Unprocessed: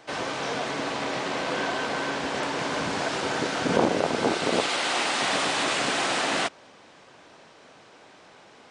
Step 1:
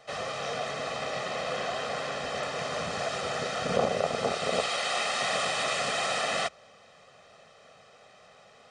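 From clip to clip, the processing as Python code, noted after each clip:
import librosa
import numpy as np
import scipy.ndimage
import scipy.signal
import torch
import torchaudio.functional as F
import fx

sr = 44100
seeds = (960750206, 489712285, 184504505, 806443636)

y = fx.hum_notches(x, sr, base_hz=60, count=2)
y = y + 0.87 * np.pad(y, (int(1.6 * sr / 1000.0), 0))[:len(y)]
y = y * librosa.db_to_amplitude(-6.0)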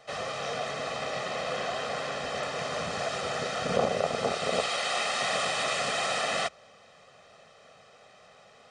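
y = x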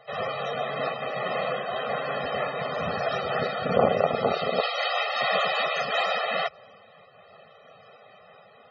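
y = fx.spec_topn(x, sr, count=64)
y = fx.am_noise(y, sr, seeds[0], hz=5.7, depth_pct=55)
y = y * librosa.db_to_amplitude(7.0)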